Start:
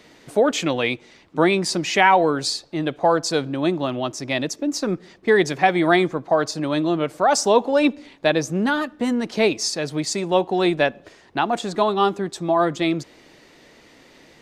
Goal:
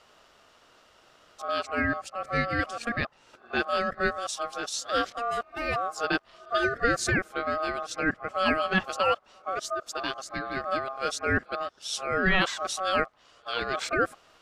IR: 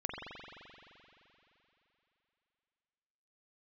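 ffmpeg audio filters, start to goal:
-af "areverse,aeval=exprs='val(0)*sin(2*PI*940*n/s)':c=same,volume=-5.5dB"

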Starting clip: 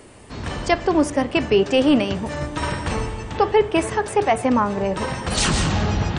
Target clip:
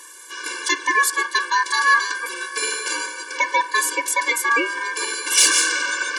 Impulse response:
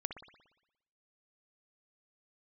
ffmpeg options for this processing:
-af "aexciter=amount=2.9:drive=7.5:freq=3.5k,aeval=exprs='val(0)*sin(2*PI*1400*n/s)':c=same,equalizer=f=670:t=o:w=0.99:g=-7.5,afftfilt=real='re*eq(mod(floor(b*sr/1024/300),2),1)':imag='im*eq(mod(floor(b*sr/1024/300),2),1)':win_size=1024:overlap=0.75,volume=5dB"

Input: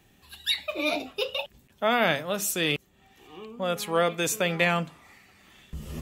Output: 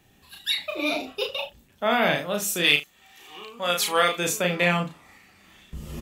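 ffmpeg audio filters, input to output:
-filter_complex "[0:a]asplit=3[a][b][c];[a]afade=t=out:st=2.63:d=0.02[d];[b]tiltshelf=f=650:g=-9,afade=t=in:st=2.63:d=0.02,afade=t=out:st=4.17:d=0.02[e];[c]afade=t=in:st=4.17:d=0.02[f];[d][e][f]amix=inputs=3:normalize=0,aecho=1:1:34|74:0.631|0.141"

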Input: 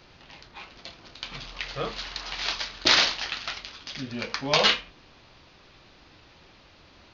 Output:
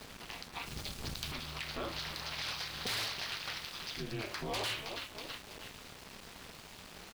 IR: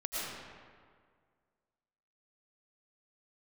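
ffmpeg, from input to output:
-filter_complex "[0:a]acontrast=69,asplit=2[a][b];[b]asplit=3[c][d][e];[c]adelay=324,afreqshift=-38,volume=-18.5dB[f];[d]adelay=648,afreqshift=-76,volume=-26dB[g];[e]adelay=972,afreqshift=-114,volume=-33.6dB[h];[f][g][h]amix=inputs=3:normalize=0[i];[a][i]amix=inputs=2:normalize=0,aeval=exprs='(tanh(8.91*val(0)+0.2)-tanh(0.2))/8.91':c=same,alimiter=level_in=1dB:limit=-24dB:level=0:latency=1:release=187,volume=-1dB,acompressor=threshold=-46dB:ratio=1.5,aeval=exprs='val(0)*gte(abs(val(0)),0.00473)':c=same,aeval=exprs='val(0)*sin(2*PI*110*n/s)':c=same,asettb=1/sr,asplit=3[j][k][l];[j]atrim=end=0.664[m];[k]atrim=start=0.66:end=1.32,asetpts=PTS-STARTPTS,afade=t=in:d=0.004:c=qsin,afade=t=out:st=0.656:d=0.004:c=qsin,bass=f=250:g=13,treble=f=4k:g=6[n];[l]atrim=start=1.316[o];[m][n]acrossfade=d=0.004:c1=hsin:c2=qsin[p];[p][o]acrossfade=d=0.004:c1=qsin:c2=hsin,volume=2.5dB"

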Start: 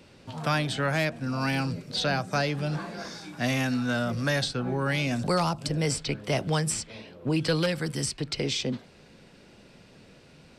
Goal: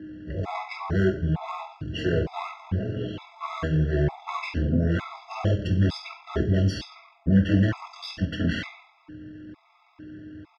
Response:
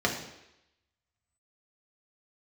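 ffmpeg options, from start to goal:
-filter_complex "[0:a]highshelf=f=3k:g=-3.5,aeval=exprs='(tanh(22.4*val(0)+0.55)-tanh(0.55))/22.4':c=same,aeval=exprs='val(0)+0.00708*sin(2*PI*500*n/s)':c=same[a];[1:a]atrim=start_sample=2205,asetrate=66150,aresample=44100[b];[a][b]afir=irnorm=-1:irlink=0,asetrate=26990,aresample=44100,atempo=1.63392,afftfilt=real='re*gt(sin(2*PI*1.1*pts/sr)*(1-2*mod(floor(b*sr/1024/670),2)),0)':imag='im*gt(sin(2*PI*1.1*pts/sr)*(1-2*mod(floor(b*sr/1024/670),2)),0)':win_size=1024:overlap=0.75"

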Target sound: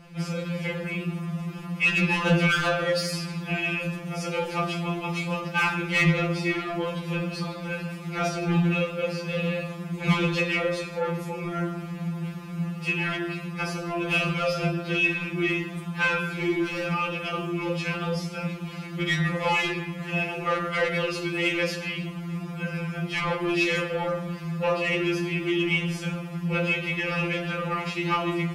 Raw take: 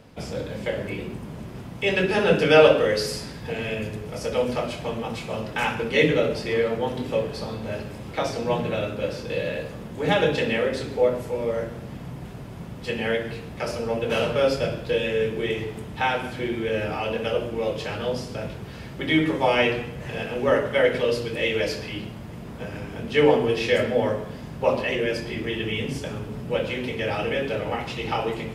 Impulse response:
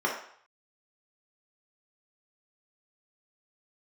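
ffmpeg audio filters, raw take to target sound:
-filter_complex "[0:a]equalizer=f=520:w=1.5:g=-3,asoftclip=type=tanh:threshold=-21dB,equalizer=f=160:t=o:w=0.33:g=6,equalizer=f=400:t=o:w=0.33:g=5,equalizer=f=1.25k:t=o:w=0.33:g=7,equalizer=f=2.5k:t=o:w=0.33:g=7,asettb=1/sr,asplit=3[a][b][c];[a]atrim=end=16.344[d];[b]atrim=start=16.34:end=16.93,asetpts=PTS-STARTPTS,afade=t=in:d=0.004:c=qsin,afade=t=out:st=0.586:d=0.004:c=qsin,asoftclip=type=hard:threshold=-24.5dB[e];[c]atrim=start=16.926[f];[d][e]acrossfade=d=0.004:c1=hsin:c2=qsin[g];[g][f]acrossfade=d=0.004:c1=qsin:c2=hsin,afftfilt=real='re*2.83*eq(mod(b,8),0)':imag='im*2.83*eq(mod(b,8),0)':win_size=2048:overlap=0.75,volume=2.5dB"

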